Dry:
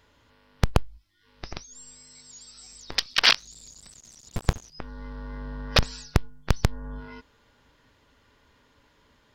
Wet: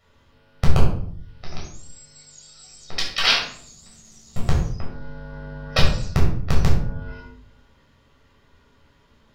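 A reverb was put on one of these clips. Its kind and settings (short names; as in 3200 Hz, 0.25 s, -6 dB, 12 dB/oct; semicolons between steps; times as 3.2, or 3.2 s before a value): shoebox room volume 930 m³, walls furnished, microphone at 6.5 m; gain -6 dB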